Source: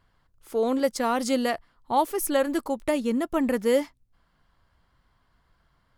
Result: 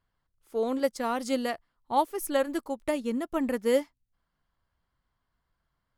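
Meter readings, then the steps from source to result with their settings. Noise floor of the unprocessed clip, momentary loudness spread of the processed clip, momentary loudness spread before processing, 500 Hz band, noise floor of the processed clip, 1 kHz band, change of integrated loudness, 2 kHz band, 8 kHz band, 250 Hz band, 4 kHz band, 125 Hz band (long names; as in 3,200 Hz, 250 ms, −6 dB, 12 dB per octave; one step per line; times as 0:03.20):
−68 dBFS, 6 LU, 5 LU, −3.5 dB, −81 dBFS, −3.0 dB, −3.5 dB, −4.0 dB, −6.5 dB, −4.5 dB, −4.0 dB, can't be measured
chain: expander for the loud parts 1.5 to 1, over −40 dBFS
level −1.5 dB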